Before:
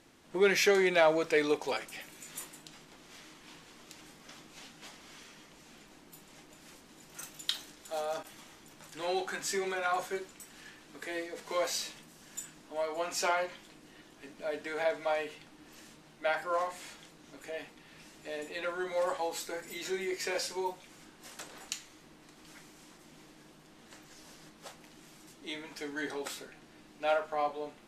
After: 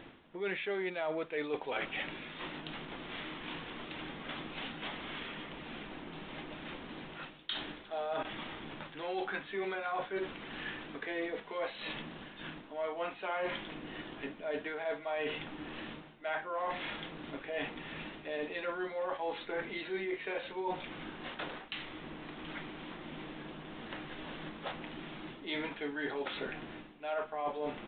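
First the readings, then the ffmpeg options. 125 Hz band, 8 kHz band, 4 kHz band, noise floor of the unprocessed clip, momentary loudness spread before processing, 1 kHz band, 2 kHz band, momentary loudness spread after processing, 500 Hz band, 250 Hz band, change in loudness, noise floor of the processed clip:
+3.0 dB, under -40 dB, -2.5 dB, -58 dBFS, 23 LU, -3.5 dB, -2.0 dB, 9 LU, -5.0 dB, -0.5 dB, -6.0 dB, -52 dBFS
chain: -af "areverse,acompressor=threshold=0.00562:ratio=12,areverse,aresample=8000,aresample=44100,volume=3.76"

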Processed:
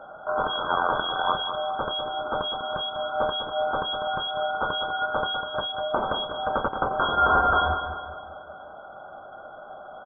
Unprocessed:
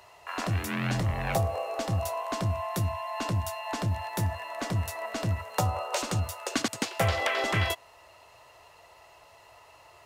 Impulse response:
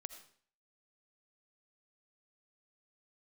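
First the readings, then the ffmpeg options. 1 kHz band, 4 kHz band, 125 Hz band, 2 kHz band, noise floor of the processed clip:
+9.0 dB, +8.5 dB, -12.0 dB, +5.0 dB, -44 dBFS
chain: -af "aemphasis=mode=reproduction:type=cd,afftfilt=real='re*(1-between(b*sr/4096,110,1800))':imag='im*(1-between(b*sr/4096,110,1800))':win_size=4096:overlap=0.75,adynamicequalizer=threshold=0.00158:dfrequency=470:dqfactor=1.7:tfrequency=470:tqfactor=1.7:attack=5:release=100:ratio=0.375:range=1.5:mode=boostabove:tftype=bell,alimiter=level_in=1.58:limit=0.0631:level=0:latency=1:release=153,volume=0.631,aexciter=amount=5.8:drive=9.9:freq=2000,aeval=exprs='0.841*(cos(1*acos(clip(val(0)/0.841,-1,1)))-cos(1*PI/2))+0.0133*(cos(3*acos(clip(val(0)/0.841,-1,1)))-cos(3*PI/2))':c=same,aecho=1:1:199|398|597|796|995:0.376|0.169|0.0761|0.0342|0.0154,lowpass=f=2900:t=q:w=0.5098,lowpass=f=2900:t=q:w=0.6013,lowpass=f=2900:t=q:w=0.9,lowpass=f=2900:t=q:w=2.563,afreqshift=-3400,volume=1.26"

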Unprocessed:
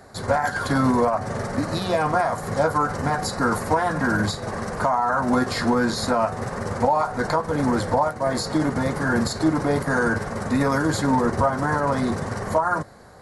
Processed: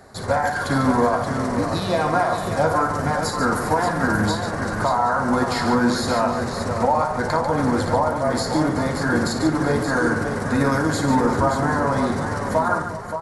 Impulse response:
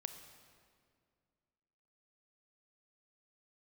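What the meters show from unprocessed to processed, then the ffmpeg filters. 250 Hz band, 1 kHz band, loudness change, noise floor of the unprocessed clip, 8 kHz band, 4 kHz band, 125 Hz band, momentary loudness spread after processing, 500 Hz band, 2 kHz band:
+1.5 dB, +1.5 dB, +1.5 dB, -34 dBFS, +1.5 dB, +2.0 dB, +2.0 dB, 4 LU, +1.5 dB, +1.5 dB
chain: -af "aecho=1:1:58|144|369|394|577|770:0.355|0.376|0.119|0.133|0.422|0.112"

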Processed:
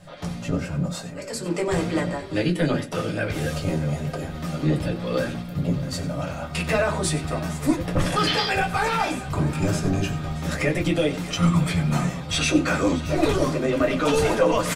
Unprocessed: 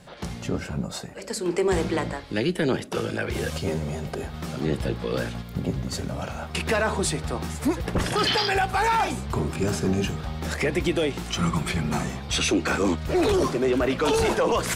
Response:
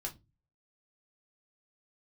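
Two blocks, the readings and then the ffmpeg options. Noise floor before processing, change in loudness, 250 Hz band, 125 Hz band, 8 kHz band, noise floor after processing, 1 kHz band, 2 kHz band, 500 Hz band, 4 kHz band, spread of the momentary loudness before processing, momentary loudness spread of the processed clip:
-38 dBFS, +1.5 dB, +2.5 dB, +4.0 dB, 0.0 dB, -35 dBFS, 0.0 dB, +1.0 dB, +0.5 dB, 0.0 dB, 9 LU, 8 LU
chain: -filter_complex "[0:a]aecho=1:1:93|624:0.158|0.15[s0];[1:a]atrim=start_sample=2205,atrim=end_sample=3969,asetrate=70560,aresample=44100[s1];[s0][s1]afir=irnorm=-1:irlink=0,volume=1.88"

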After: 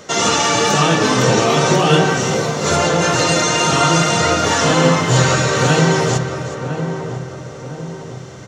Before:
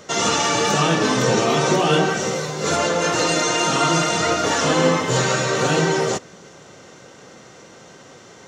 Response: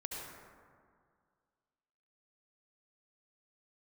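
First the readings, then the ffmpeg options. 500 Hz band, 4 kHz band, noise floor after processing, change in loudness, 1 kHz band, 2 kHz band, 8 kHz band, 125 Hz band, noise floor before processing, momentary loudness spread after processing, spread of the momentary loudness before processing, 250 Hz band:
+3.5 dB, +4.0 dB, -32 dBFS, +4.0 dB, +4.0 dB, +4.0 dB, +4.0 dB, +8.5 dB, -45 dBFS, 16 LU, 4 LU, +4.5 dB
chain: -filter_complex "[0:a]asplit=2[s0][s1];[s1]aecho=0:1:371:0.211[s2];[s0][s2]amix=inputs=2:normalize=0,asubboost=boost=3:cutoff=150,asplit=2[s3][s4];[s4]adelay=1005,lowpass=f=990:p=1,volume=0.398,asplit=2[s5][s6];[s6]adelay=1005,lowpass=f=990:p=1,volume=0.5,asplit=2[s7][s8];[s8]adelay=1005,lowpass=f=990:p=1,volume=0.5,asplit=2[s9][s10];[s10]adelay=1005,lowpass=f=990:p=1,volume=0.5,asplit=2[s11][s12];[s12]adelay=1005,lowpass=f=990:p=1,volume=0.5,asplit=2[s13][s14];[s14]adelay=1005,lowpass=f=990:p=1,volume=0.5[s15];[s5][s7][s9][s11][s13][s15]amix=inputs=6:normalize=0[s16];[s3][s16]amix=inputs=2:normalize=0,volume=1.58"

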